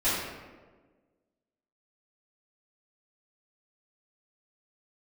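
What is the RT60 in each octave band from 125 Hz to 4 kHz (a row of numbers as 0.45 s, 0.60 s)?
1.5 s, 1.7 s, 1.6 s, 1.2 s, 1.1 s, 0.75 s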